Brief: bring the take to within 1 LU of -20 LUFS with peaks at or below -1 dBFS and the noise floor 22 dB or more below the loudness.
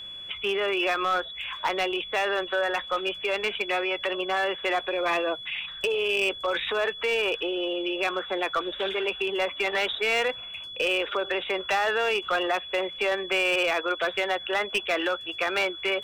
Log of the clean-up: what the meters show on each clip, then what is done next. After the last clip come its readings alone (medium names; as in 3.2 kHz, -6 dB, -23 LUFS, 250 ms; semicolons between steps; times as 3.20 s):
clipped samples 0.9%; clipping level -19.0 dBFS; steady tone 3.4 kHz; tone level -37 dBFS; loudness -26.5 LUFS; peak level -19.0 dBFS; loudness target -20.0 LUFS
-> clip repair -19 dBFS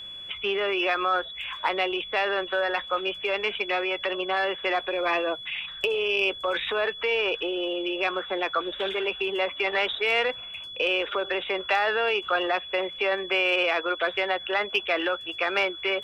clipped samples 0.0%; steady tone 3.4 kHz; tone level -37 dBFS
-> band-stop 3.4 kHz, Q 30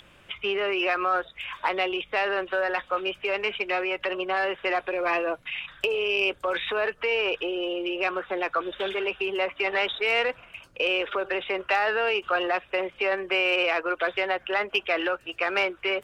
steady tone not found; loudness -26.5 LUFS; peak level -11.5 dBFS; loudness target -20.0 LUFS
-> trim +6.5 dB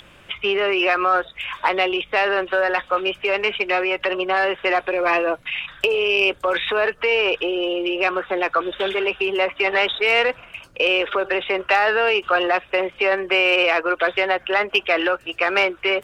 loudness -20.0 LUFS; peak level -5.0 dBFS; noise floor -49 dBFS